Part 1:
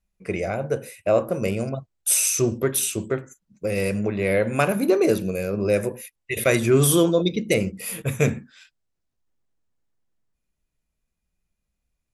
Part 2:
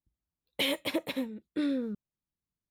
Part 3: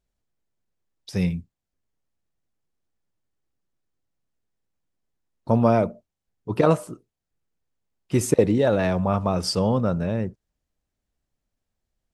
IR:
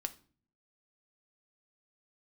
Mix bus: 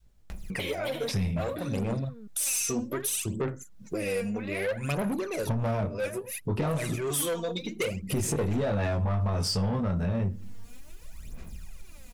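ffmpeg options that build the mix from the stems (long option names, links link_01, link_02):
-filter_complex "[0:a]acompressor=mode=upward:threshold=-23dB:ratio=2.5,aphaser=in_gain=1:out_gain=1:delay=4.3:decay=0.74:speed=0.63:type=sinusoidal,adelay=300,volume=-2.5dB[link_01];[1:a]acompressor=threshold=-39dB:ratio=5,volume=1.5dB,asplit=3[link_02][link_03][link_04];[link_03]volume=-3.5dB[link_05];[link_04]volume=-5dB[link_06];[2:a]lowshelf=frequency=180:gain=10,acontrast=86,flanger=delay=18.5:depth=2.8:speed=0.55,volume=3dB,asplit=2[link_07][link_08];[link_08]volume=-8.5dB[link_09];[link_01][link_07]amix=inputs=2:normalize=0,asoftclip=type=tanh:threshold=-16dB,acompressor=threshold=-30dB:ratio=2,volume=0dB[link_10];[3:a]atrim=start_sample=2205[link_11];[link_05][link_09]amix=inputs=2:normalize=0[link_12];[link_12][link_11]afir=irnorm=-1:irlink=0[link_13];[link_06]aecho=0:1:326:1[link_14];[link_02][link_10][link_13][link_14]amix=inputs=4:normalize=0,adynamicequalizer=threshold=0.0141:dfrequency=330:dqfactor=0.88:tfrequency=330:tqfactor=0.88:attack=5:release=100:ratio=0.375:range=2.5:mode=cutabove:tftype=bell,alimiter=limit=-21.5dB:level=0:latency=1:release=204"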